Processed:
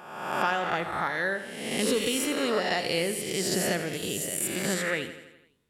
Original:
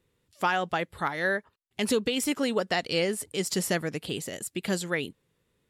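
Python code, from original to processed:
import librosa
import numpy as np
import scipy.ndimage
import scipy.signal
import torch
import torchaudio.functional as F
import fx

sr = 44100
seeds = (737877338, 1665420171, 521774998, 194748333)

p1 = fx.spec_swells(x, sr, rise_s=1.11)
p2 = fx.high_shelf(p1, sr, hz=8200.0, db=11.0, at=(3.93, 4.74))
p3 = p2 + fx.echo_feedback(p2, sr, ms=84, feedback_pct=58, wet_db=-12, dry=0)
y = p3 * librosa.db_to_amplitude(-3.5)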